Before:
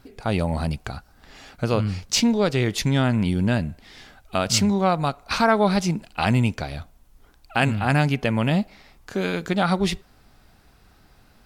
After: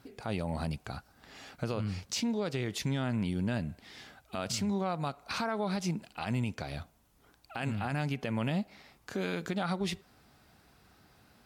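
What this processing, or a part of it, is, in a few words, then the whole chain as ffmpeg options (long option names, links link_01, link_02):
podcast mastering chain: -af "highpass=84,acompressor=threshold=-27dB:ratio=2,alimiter=limit=-19dB:level=0:latency=1:release=47,volume=-4dB" -ar 48000 -c:a libmp3lame -b:a 96k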